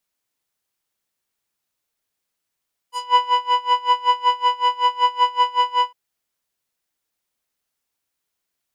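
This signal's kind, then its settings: synth patch with tremolo B5, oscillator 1 square, interval 0 st, detune 20 cents, oscillator 2 level -9 dB, sub -17 dB, noise -26 dB, filter lowpass, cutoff 2.4 kHz, Q 1.1, filter envelope 2.5 oct, filter decay 0.16 s, filter sustain 0%, attack 324 ms, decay 0.06 s, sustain -5 dB, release 0.08 s, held 2.93 s, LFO 5.3 Hz, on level 23 dB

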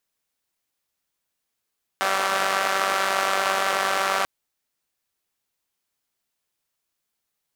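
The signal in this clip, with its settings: four-cylinder engine model, steady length 2.24 s, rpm 5800, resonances 710/1200 Hz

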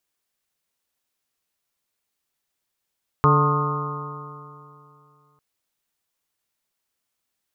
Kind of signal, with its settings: stretched partials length 2.15 s, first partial 144 Hz, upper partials -10/-5/-17/-18.5/-9/-2/-1/-20 dB, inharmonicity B 0.0024, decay 2.65 s, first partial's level -16 dB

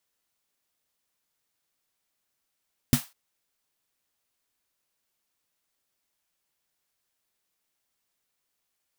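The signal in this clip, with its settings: snare drum length 0.20 s, tones 140 Hz, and 240 Hz, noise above 670 Hz, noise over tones -9.5 dB, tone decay 0.10 s, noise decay 0.27 s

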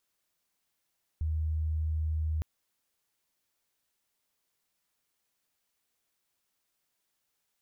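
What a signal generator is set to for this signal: tone sine 78.3 Hz -27.5 dBFS 1.21 s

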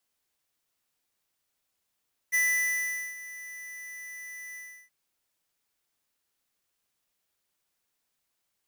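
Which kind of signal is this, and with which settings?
ADSR square 1.99 kHz, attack 25 ms, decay 800 ms, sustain -18 dB, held 2.24 s, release 335 ms -24 dBFS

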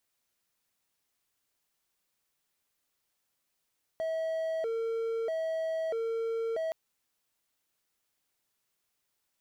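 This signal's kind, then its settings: siren hi-lo 455–646 Hz 0.78 per s triangle -27.5 dBFS 2.72 s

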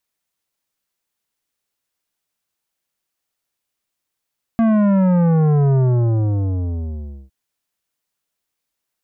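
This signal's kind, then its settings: sub drop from 230 Hz, over 2.71 s, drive 12 dB, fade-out 1.54 s, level -13 dB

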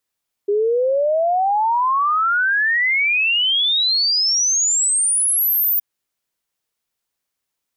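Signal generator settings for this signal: log sweep 400 Hz -> 15 kHz 5.32 s -14.5 dBFS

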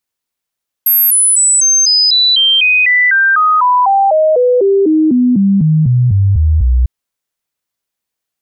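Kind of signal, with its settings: stepped sine 12.6 kHz down, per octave 3, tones 24, 0.25 s, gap 0.00 s -6.5 dBFS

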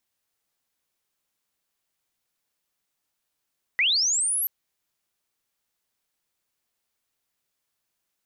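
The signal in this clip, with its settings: sweep linear 1.9 kHz -> 12 kHz -18 dBFS -> -23 dBFS 0.68 s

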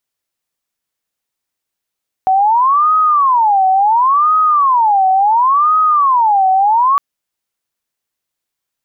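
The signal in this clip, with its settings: siren wail 755–1260 Hz 0.71 per s sine -8 dBFS 4.71 s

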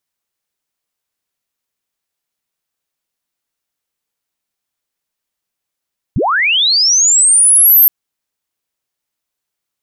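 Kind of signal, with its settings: sweep linear 62 Hz -> 13 kHz -11 dBFS -> -3.5 dBFS 1.72 s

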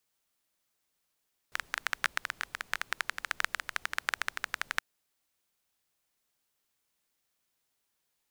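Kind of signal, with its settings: rain from filtered ticks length 3.27 s, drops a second 13, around 1.6 kHz, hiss -23.5 dB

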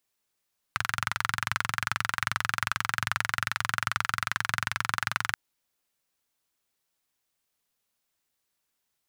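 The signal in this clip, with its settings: single-cylinder engine model, steady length 4.58 s, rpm 2700, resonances 110/1400 Hz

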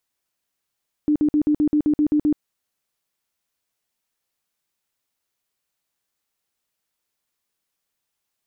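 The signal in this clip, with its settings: tone bursts 299 Hz, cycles 23, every 0.13 s, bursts 10, -14.5 dBFS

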